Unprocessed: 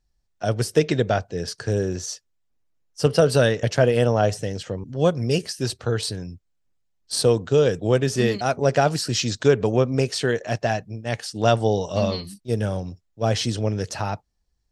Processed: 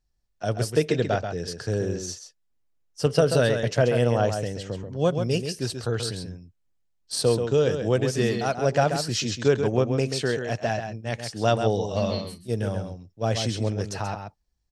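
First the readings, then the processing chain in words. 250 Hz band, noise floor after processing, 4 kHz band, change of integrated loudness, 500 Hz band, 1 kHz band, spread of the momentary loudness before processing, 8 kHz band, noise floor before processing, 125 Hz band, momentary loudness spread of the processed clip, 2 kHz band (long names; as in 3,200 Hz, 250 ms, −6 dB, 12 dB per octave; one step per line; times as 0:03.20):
−2.5 dB, −71 dBFS, −3.0 dB, −2.5 dB, −2.5 dB, −2.5 dB, 11 LU, −3.0 dB, −71 dBFS, −2.5 dB, 10 LU, −3.0 dB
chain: slap from a distant wall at 23 metres, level −7 dB
level −3.5 dB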